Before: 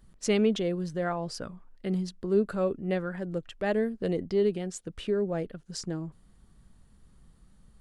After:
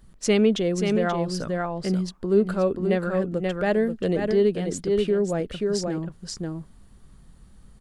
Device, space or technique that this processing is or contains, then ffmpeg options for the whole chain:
ducked delay: -filter_complex "[0:a]asplit=3[s0][s1][s2];[s1]adelay=532,volume=0.75[s3];[s2]apad=whole_len=367744[s4];[s3][s4]sidechaincompress=threshold=0.0224:ratio=8:attack=21:release=129[s5];[s0][s5]amix=inputs=2:normalize=0,volume=1.78"

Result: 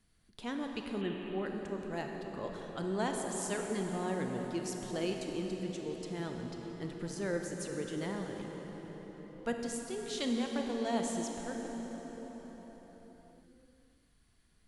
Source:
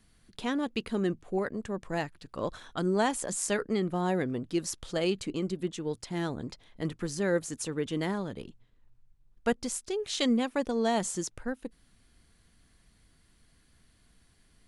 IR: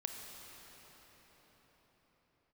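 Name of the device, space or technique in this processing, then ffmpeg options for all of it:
cathedral: -filter_complex "[1:a]atrim=start_sample=2205[s0];[0:a][s0]afir=irnorm=-1:irlink=0,asettb=1/sr,asplit=3[s1][s2][s3];[s1]atrim=end=1.014[s4];[s2]atrim=start=1.01:end=1.46,asetpts=PTS-STARTPTS,afade=t=in:d=0.004:c=qsin,afade=t=out:st=0.446:d=0.004:c=qsin,highshelf=f=4100:t=q:w=3:g=-8.5[s5];[s3]atrim=start=1.456[s6];[s4][s5]acrossfade=d=0.004:c1=hsin:c2=qsin[s7];[s7][s6]acrossfade=d=0.004:c1=qsin:c2=hsin,volume=0.531"

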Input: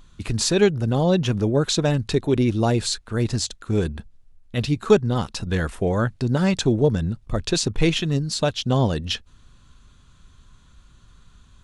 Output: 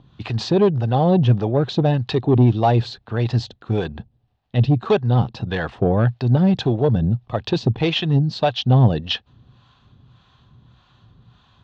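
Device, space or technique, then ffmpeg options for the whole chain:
guitar amplifier with harmonic tremolo: -filter_complex "[0:a]acrossover=split=540[s0][s1];[s0]aeval=exprs='val(0)*(1-0.7/2+0.7/2*cos(2*PI*1.7*n/s))':c=same[s2];[s1]aeval=exprs='val(0)*(1-0.7/2-0.7/2*cos(2*PI*1.7*n/s))':c=same[s3];[s2][s3]amix=inputs=2:normalize=0,asoftclip=type=tanh:threshold=0.158,highpass=95,equalizer=f=120:t=q:w=4:g=9,equalizer=f=770:t=q:w=4:g=8,equalizer=f=1400:t=q:w=4:g=-5,equalizer=f=2200:t=q:w=4:g=-6,lowpass=f=4000:w=0.5412,lowpass=f=4000:w=1.3066,volume=2.11"

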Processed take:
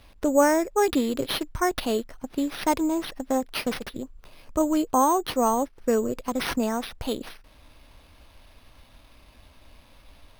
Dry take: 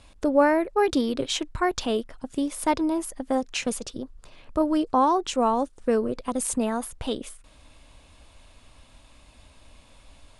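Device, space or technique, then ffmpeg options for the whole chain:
crushed at another speed: -af "asetrate=22050,aresample=44100,acrusher=samples=12:mix=1:aa=0.000001,asetrate=88200,aresample=44100"

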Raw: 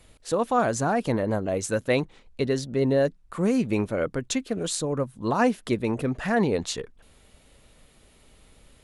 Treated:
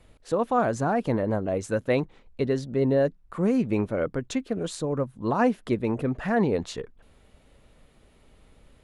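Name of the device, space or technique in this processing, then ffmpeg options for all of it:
through cloth: -af "highshelf=f=3100:g=-11"

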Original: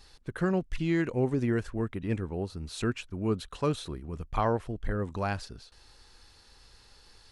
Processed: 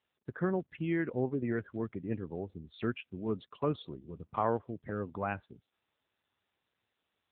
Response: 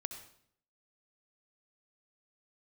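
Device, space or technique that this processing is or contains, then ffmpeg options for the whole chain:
mobile call with aggressive noise cancelling: -af "highpass=f=140:p=1,afftdn=nr=23:nf=-43,volume=0.794" -ar 8000 -c:a libopencore_amrnb -b:a 7950

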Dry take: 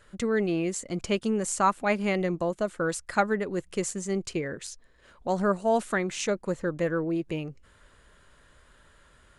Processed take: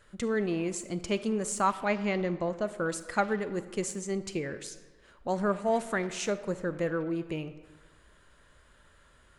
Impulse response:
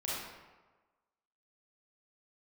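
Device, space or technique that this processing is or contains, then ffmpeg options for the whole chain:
saturated reverb return: -filter_complex "[0:a]asplit=2[s0][s1];[1:a]atrim=start_sample=2205[s2];[s1][s2]afir=irnorm=-1:irlink=0,asoftclip=type=tanh:threshold=0.075,volume=0.251[s3];[s0][s3]amix=inputs=2:normalize=0,asettb=1/sr,asplit=3[s4][s5][s6];[s4]atrim=end=1.854[s7];[s5]atrim=start=1.85:end=2.66,asetpts=PTS-STARTPTS,afade=t=in:d=0.004:c=qsin,afade=t=out:st=0.806:d=0.004:c=qsin,lowpass=f=6700:w=0.5412,lowpass=f=6700:w=1.3066[s8];[s6]atrim=start=2.656[s9];[s7][s8]acrossfade=d=0.004:c1=hsin:c2=qsin[s10];[s10][s9]acrossfade=d=0.004:c1=qsin:c2=hsin,volume=0.631"

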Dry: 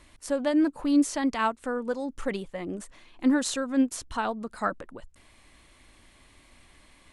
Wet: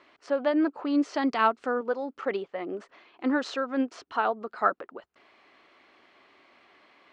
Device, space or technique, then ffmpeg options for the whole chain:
phone earpiece: -filter_complex "[0:a]asettb=1/sr,asplit=3[s0][s1][s2];[s0]atrim=end=1.144[s3];[s1]atrim=start=1.14:end=1.81,asetpts=PTS-STARTPTS,afade=t=in:d=0.004:c=qsin,afade=t=out:st=0.666:d=0.004:c=qsin,bass=f=250:g=9,treble=f=4000:g=10[s4];[s2]atrim=start=1.806[s5];[s3][s4]acrossfade=d=0.004:c1=hsin:c2=qsin[s6];[s6][s5]acrossfade=d=0.004:c1=qsin:c2=hsin,highpass=330,equalizer=f=400:t=q:w=4:g=7,equalizer=f=720:t=q:w=4:g=5,equalizer=f=1300:t=q:w=4:g=6,equalizer=f=3700:t=q:w=4:g=-5,lowpass=f=4400:w=0.5412,lowpass=f=4400:w=1.3066"

